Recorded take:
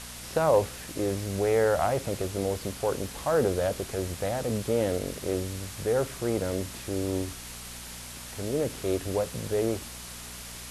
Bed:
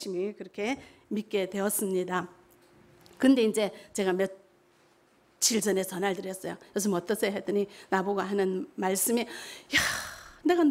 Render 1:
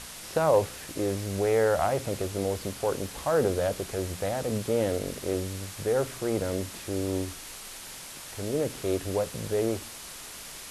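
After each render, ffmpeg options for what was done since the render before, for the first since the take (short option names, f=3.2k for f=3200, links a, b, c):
-af "bandreject=f=60:t=h:w=4,bandreject=f=120:t=h:w=4,bandreject=f=180:t=h:w=4,bandreject=f=240:t=h:w=4"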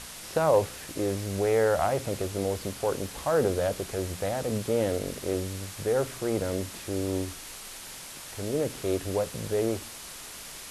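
-af anull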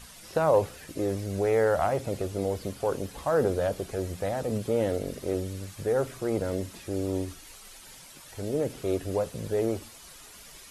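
-af "afftdn=nr=10:nf=-43"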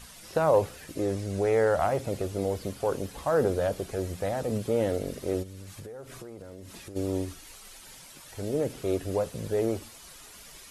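-filter_complex "[0:a]asettb=1/sr,asplit=3[a][b][c];[a]atrim=end=1.004[d];[b]atrim=start=1:end=1.79,asetpts=PTS-STARTPTS,afade=t=in:d=0.004:c=qsin,afade=t=out:st=0.786:d=0.004:c=qsin,lowpass=f=11k:w=0.5412,lowpass=f=11k:w=1.3066[e];[c]atrim=start=1.786[f];[d][e]acrossfade=d=0.004:c1=hsin:c2=qsin[g];[g][f]acrossfade=d=0.004:c1=qsin:c2=hsin,asplit=3[h][i][j];[h]afade=t=out:st=5.42:d=0.02[k];[i]acompressor=threshold=-38dB:ratio=20:attack=3.2:release=140:knee=1:detection=peak,afade=t=in:st=5.42:d=0.02,afade=t=out:st=6.95:d=0.02[l];[j]afade=t=in:st=6.95:d=0.02[m];[k][l][m]amix=inputs=3:normalize=0"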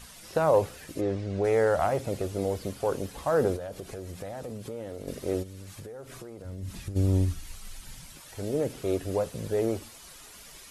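-filter_complex "[0:a]asplit=3[a][b][c];[a]afade=t=out:st=1:d=0.02[d];[b]lowpass=3.9k,afade=t=in:st=1:d=0.02,afade=t=out:st=1.43:d=0.02[e];[c]afade=t=in:st=1.43:d=0.02[f];[d][e][f]amix=inputs=3:normalize=0,asettb=1/sr,asplit=3[g][h][i];[g]atrim=end=3.564[j];[h]atrim=start=3.56:end=5.08,asetpts=PTS-STARTPTS,afade=t=in:d=0.004:c=qsin,afade=t=out:st=1.516:d=0.004:c=qsin,acompressor=threshold=-35dB:ratio=4:attack=3.2:release=140:knee=1:detection=peak[k];[i]atrim=start=5.076[l];[j][k]acrossfade=d=0.004:c1=hsin:c2=qsin[m];[m][l]acrossfade=d=0.004:c1=qsin:c2=hsin,asplit=3[n][o][p];[n]afade=t=out:st=6.44:d=0.02[q];[o]asubboost=boost=5.5:cutoff=170,afade=t=in:st=6.44:d=0.02,afade=t=out:st=8.15:d=0.02[r];[p]afade=t=in:st=8.15:d=0.02[s];[q][r][s]amix=inputs=3:normalize=0"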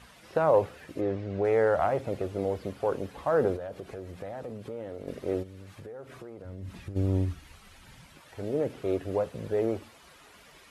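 -af "highpass=53,bass=f=250:g=-3,treble=f=4k:g=-14"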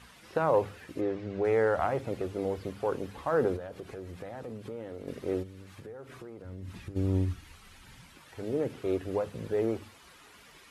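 -af "equalizer=f=620:t=o:w=0.57:g=-5.5,bandreject=f=50:t=h:w=6,bandreject=f=100:t=h:w=6,bandreject=f=150:t=h:w=6,bandreject=f=200:t=h:w=6"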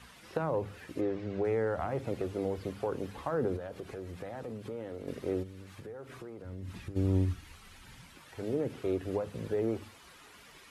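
-filter_complex "[0:a]acrossover=split=330[a][b];[b]acompressor=threshold=-32dB:ratio=6[c];[a][c]amix=inputs=2:normalize=0"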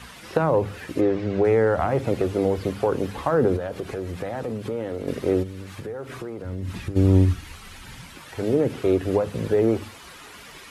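-af "volume=11.5dB"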